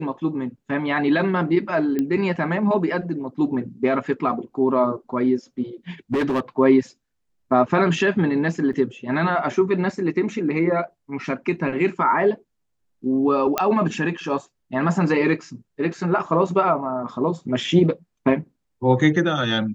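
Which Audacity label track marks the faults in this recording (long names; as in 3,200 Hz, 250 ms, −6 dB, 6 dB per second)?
1.990000	1.990000	click −12 dBFS
6.130000	6.400000	clipping −17.5 dBFS
8.730000	8.730000	drop-out 2 ms
13.580000	13.580000	click −5 dBFS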